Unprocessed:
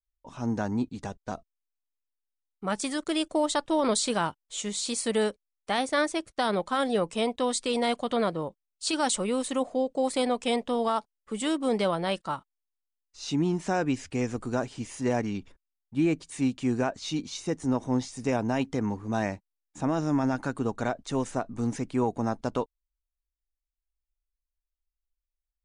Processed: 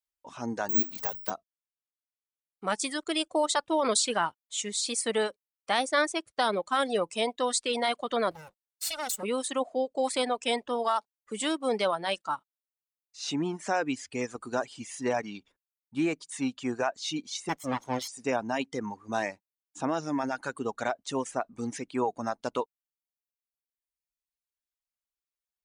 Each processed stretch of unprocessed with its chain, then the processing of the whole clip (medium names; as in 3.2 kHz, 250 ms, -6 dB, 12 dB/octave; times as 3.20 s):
0.69–1.30 s: jump at every zero crossing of -38.5 dBFS + hum notches 50/100/150/200/250/300/350 Hz + careless resampling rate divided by 2×, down filtered, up zero stuff
8.31–9.23 s: comb filter that takes the minimum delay 1.4 ms + treble shelf 4.3 kHz +9 dB + compression 3:1, threshold -33 dBFS
17.49–18.08 s: comb filter that takes the minimum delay 0.94 ms + peaking EQ 3.3 kHz +5.5 dB 2.5 oct
whole clip: reverb removal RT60 1.6 s; high-pass 470 Hz 6 dB/octave; trim +2.5 dB